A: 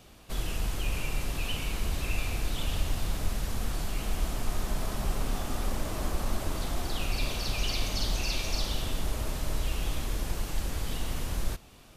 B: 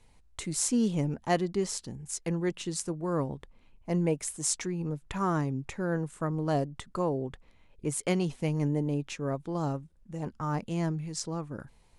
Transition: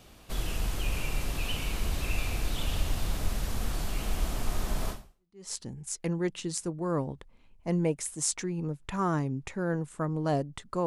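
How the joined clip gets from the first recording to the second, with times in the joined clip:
A
5.21 switch to B from 1.43 s, crossfade 0.62 s exponential

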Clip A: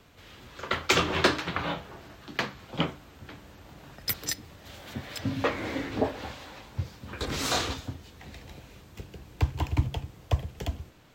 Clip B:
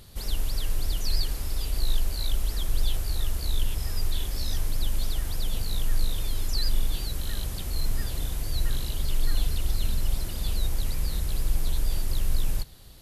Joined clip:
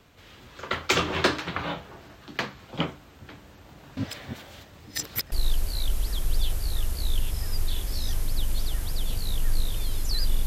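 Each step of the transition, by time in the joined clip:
clip A
3.97–5.32 reverse
5.32 switch to clip B from 1.76 s

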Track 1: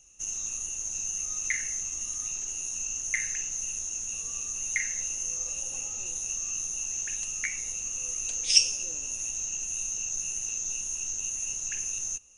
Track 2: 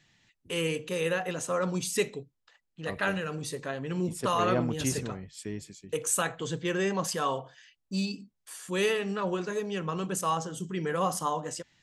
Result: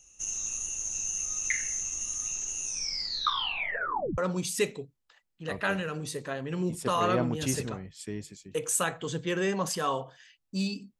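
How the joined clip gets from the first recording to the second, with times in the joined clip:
track 1
2.64 tape stop 1.54 s
4.18 switch to track 2 from 1.56 s

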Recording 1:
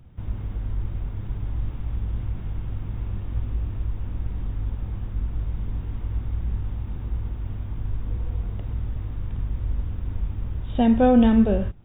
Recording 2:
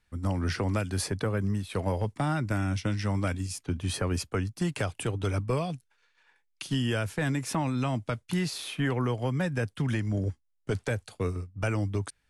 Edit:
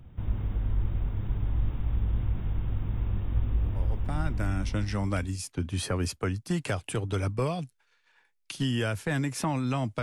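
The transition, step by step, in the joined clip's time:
recording 1
4.5 switch to recording 2 from 2.61 s, crossfade 1.82 s equal-power

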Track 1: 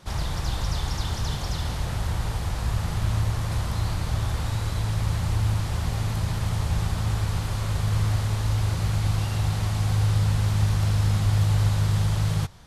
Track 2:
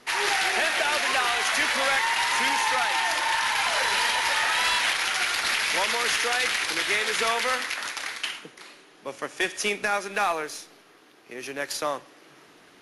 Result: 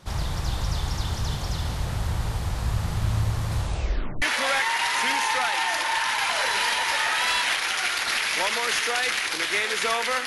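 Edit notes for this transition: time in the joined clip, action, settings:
track 1
3.58 tape stop 0.64 s
4.22 switch to track 2 from 1.59 s

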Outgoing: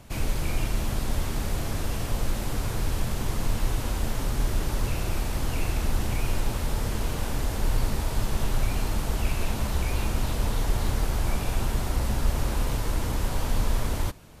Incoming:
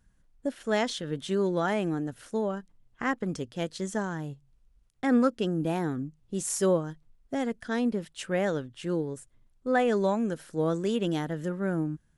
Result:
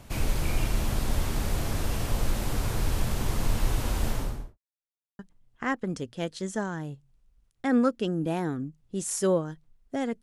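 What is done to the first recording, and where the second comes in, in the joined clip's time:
outgoing
4.07–4.58 studio fade out
4.58–5.19 mute
5.19 switch to incoming from 2.58 s

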